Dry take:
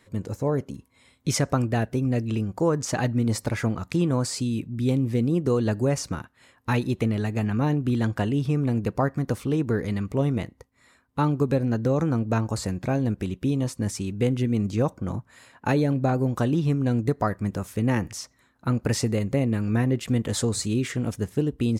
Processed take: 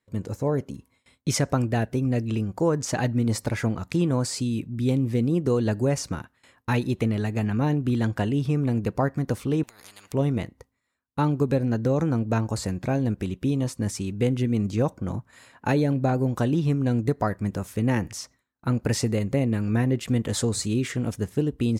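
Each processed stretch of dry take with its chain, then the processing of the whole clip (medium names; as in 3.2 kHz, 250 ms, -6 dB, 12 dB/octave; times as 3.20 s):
9.63–10.13 s: compressor with a negative ratio -28 dBFS + spectrum-flattening compressor 10:1
whole clip: gate with hold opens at -45 dBFS; dynamic bell 1.2 kHz, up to -4 dB, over -48 dBFS, Q 6.5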